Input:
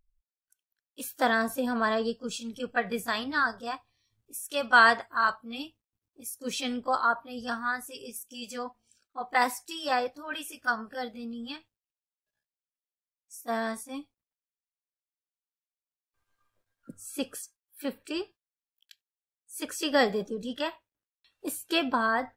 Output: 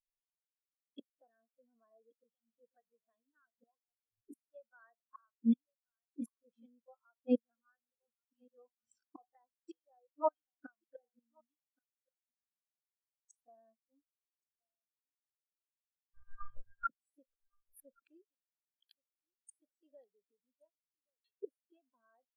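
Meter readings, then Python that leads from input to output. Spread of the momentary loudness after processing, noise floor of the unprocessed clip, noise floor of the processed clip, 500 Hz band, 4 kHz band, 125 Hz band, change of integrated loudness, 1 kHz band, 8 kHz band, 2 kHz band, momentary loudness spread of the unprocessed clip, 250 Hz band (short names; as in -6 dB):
22 LU, under -85 dBFS, under -85 dBFS, -13.5 dB, under -35 dB, n/a, -8.5 dB, -19.5 dB, under -25 dB, -31.5 dB, 16 LU, -7.5 dB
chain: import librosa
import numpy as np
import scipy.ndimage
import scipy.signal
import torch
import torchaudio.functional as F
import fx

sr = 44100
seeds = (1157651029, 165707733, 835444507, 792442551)

y = fx.recorder_agc(x, sr, target_db=-12.5, rise_db_per_s=7.9, max_gain_db=30)
y = fx.dynamic_eq(y, sr, hz=560.0, q=1.9, threshold_db=-39.0, ratio=4.0, max_db=6)
y = fx.gate_flip(y, sr, shuts_db=-27.0, range_db=-33)
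y = y + 10.0 ** (-15.0 / 20.0) * np.pad(y, (int(1125 * sr / 1000.0), 0))[:len(y)]
y = fx.spectral_expand(y, sr, expansion=2.5)
y = F.gain(torch.from_numpy(y), 3.5).numpy()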